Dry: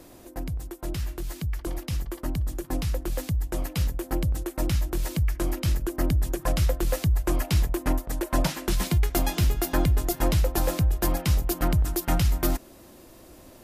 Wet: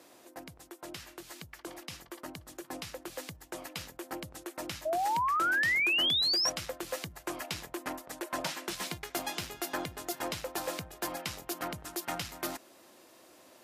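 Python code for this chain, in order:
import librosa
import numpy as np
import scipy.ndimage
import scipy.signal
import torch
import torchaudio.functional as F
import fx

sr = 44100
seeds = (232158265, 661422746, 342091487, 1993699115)

y = 10.0 ** (-14.5 / 20.0) * np.tanh(x / 10.0 ** (-14.5 / 20.0))
y = fx.spec_paint(y, sr, seeds[0], shape='rise', start_s=4.85, length_s=1.65, low_hz=610.0, high_hz=5800.0, level_db=-25.0)
y = fx.weighting(y, sr, curve='A')
y = y * librosa.db_to_amplitude(-4.0)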